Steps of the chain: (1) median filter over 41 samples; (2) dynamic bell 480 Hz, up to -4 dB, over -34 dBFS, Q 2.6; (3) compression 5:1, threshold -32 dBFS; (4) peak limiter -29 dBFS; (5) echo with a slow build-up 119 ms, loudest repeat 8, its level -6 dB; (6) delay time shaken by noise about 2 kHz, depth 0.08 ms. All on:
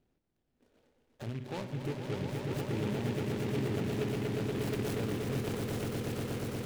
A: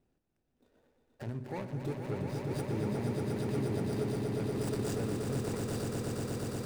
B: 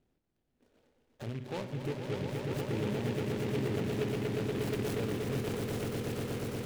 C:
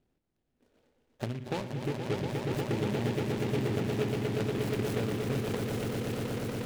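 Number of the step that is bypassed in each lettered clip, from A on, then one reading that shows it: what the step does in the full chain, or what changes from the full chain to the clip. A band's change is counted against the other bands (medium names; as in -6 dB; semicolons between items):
6, 2 kHz band -3.5 dB; 2, 500 Hz band +1.5 dB; 4, 8 kHz band -1.5 dB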